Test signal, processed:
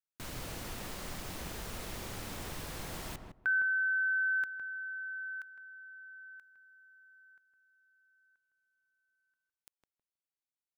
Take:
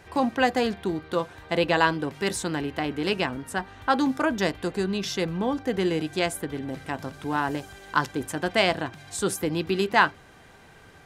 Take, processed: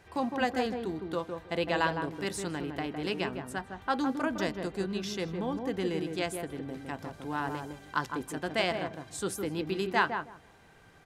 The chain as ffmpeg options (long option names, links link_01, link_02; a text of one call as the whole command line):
ffmpeg -i in.wav -filter_complex "[0:a]asplit=2[link_01][link_02];[link_02]adelay=159,lowpass=frequency=960:poles=1,volume=-4dB,asplit=2[link_03][link_04];[link_04]adelay=159,lowpass=frequency=960:poles=1,volume=0.2,asplit=2[link_05][link_06];[link_06]adelay=159,lowpass=frequency=960:poles=1,volume=0.2[link_07];[link_01][link_03][link_05][link_07]amix=inputs=4:normalize=0,volume=-7.5dB" out.wav